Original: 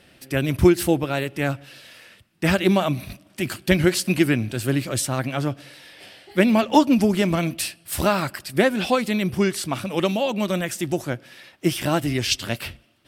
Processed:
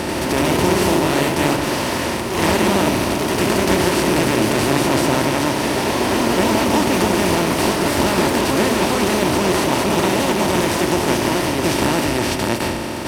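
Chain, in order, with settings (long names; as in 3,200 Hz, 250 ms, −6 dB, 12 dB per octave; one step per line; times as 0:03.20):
compressor on every frequency bin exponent 0.2
delay with pitch and tempo change per echo 89 ms, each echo +1 semitone, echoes 3
level −9 dB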